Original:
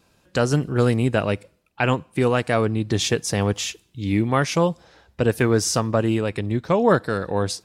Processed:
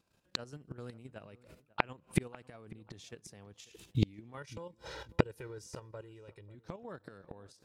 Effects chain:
noise gate −52 dBFS, range −20 dB
0:04.37–0:06.55: comb filter 2.1 ms, depth 82%
output level in coarse steps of 9 dB
gate with flip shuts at −22 dBFS, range −35 dB
feedback echo with a low-pass in the loop 544 ms, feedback 30%, low-pass 2,000 Hz, level −20 dB
level +9 dB

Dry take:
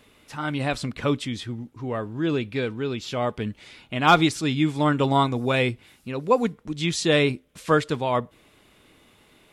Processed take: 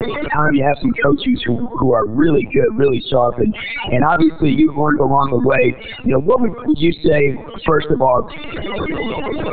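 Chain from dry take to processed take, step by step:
converter with a step at zero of −31.5 dBFS
high-pass filter 210 Hz 12 dB per octave
reverb reduction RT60 0.91 s
in parallel at −11 dB: decimation without filtering 12×
on the sum: spectral peaks only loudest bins 16
gain into a clipping stage and back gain 6.5 dB
on a send at −24 dB: convolution reverb RT60 1.1 s, pre-delay 29 ms
on the sum: linear-prediction vocoder at 8 kHz pitch kept
boost into a limiter +15 dB
multiband upward and downward compressor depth 70%
level −2 dB

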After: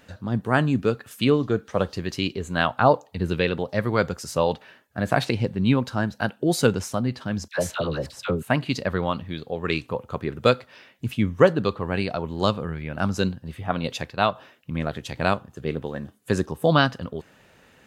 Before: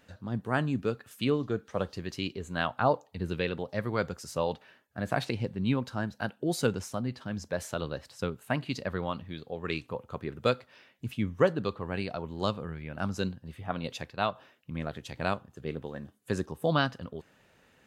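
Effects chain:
0:07.48–0:08.43: all-pass dispersion lows, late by 76 ms, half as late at 960 Hz
level +8 dB

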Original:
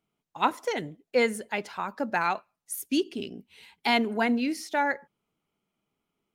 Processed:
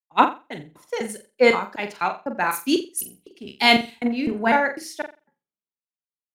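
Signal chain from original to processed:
slices reordered back to front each 251 ms, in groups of 2
flutter between parallel walls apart 7.5 metres, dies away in 0.35 s
multiband upward and downward expander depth 100%
level +3.5 dB

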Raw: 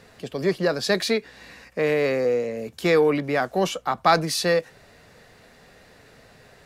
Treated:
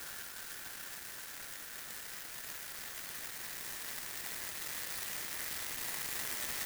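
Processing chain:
turntable start at the beginning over 1.54 s
Butterworth high-pass 1,300 Hz
compressor whose output falls as the input rises −31 dBFS
extreme stretch with random phases 26×, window 1.00 s, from 0:01.40
converter with an unsteady clock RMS 0.12 ms
level −2 dB

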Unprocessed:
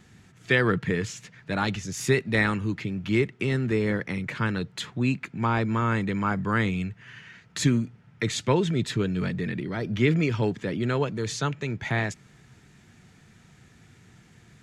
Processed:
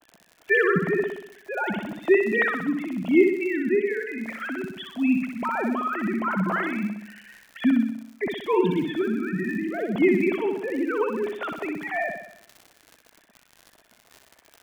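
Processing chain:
three sine waves on the formant tracks
parametric band 660 Hz +8.5 dB 0.35 octaves
surface crackle 58 per second −34 dBFS
on a send: flutter between parallel walls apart 10.7 metres, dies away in 0.72 s

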